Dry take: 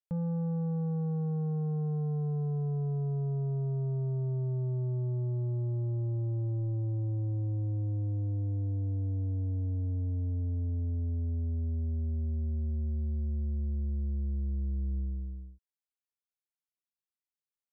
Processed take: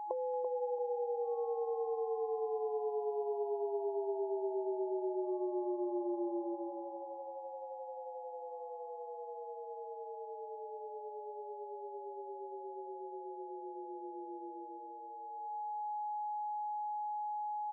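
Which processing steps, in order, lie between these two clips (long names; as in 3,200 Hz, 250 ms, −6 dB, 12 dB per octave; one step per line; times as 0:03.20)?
steady tone 840 Hz −57 dBFS
downward compressor 5 to 1, threshold −43 dBFS, peak gain reduction 10.5 dB
brick-wall band-pass 340–1,100 Hz
repeating echo 337 ms, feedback 25%, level −8 dB
level +18 dB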